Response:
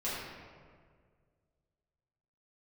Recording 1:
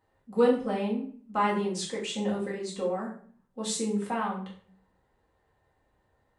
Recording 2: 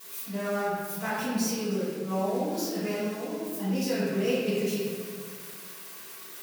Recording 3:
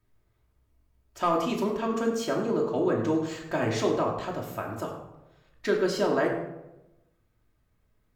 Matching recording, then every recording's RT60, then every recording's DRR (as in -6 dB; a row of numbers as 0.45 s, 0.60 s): 2; 0.50 s, 1.9 s, 0.95 s; -5.5 dB, -11.0 dB, -1.5 dB